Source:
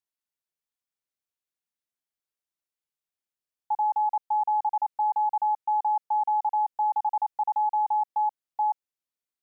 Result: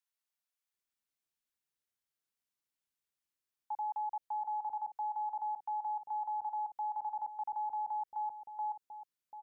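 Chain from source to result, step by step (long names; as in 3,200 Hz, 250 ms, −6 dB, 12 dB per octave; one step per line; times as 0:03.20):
brickwall limiter −30.5 dBFS, peak gain reduction 10 dB
multiband delay without the direct sound highs, lows 740 ms, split 610 Hz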